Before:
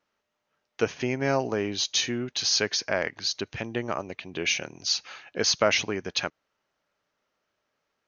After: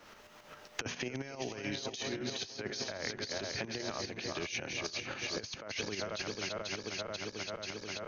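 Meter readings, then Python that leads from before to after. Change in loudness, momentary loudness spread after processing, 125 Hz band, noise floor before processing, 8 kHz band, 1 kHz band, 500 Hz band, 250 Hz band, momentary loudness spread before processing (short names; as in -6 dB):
-11.5 dB, 4 LU, -8.5 dB, -80 dBFS, n/a, -10.0 dB, -10.5 dB, -9.0 dB, 10 LU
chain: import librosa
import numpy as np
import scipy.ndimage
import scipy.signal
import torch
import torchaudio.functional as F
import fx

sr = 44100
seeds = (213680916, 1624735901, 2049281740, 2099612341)

y = fx.reverse_delay_fb(x, sr, ms=244, feedback_pct=76, wet_db=-9.0)
y = fx.low_shelf(y, sr, hz=74.0, db=6.5)
y = fx.hum_notches(y, sr, base_hz=60, count=4)
y = fx.over_compress(y, sr, threshold_db=-29.0, ratio=-0.5)
y = fx.tremolo_shape(y, sr, shape='saw_up', hz=7.4, depth_pct=55)
y = fx.band_squash(y, sr, depth_pct=100)
y = y * 10.0 ** (-7.0 / 20.0)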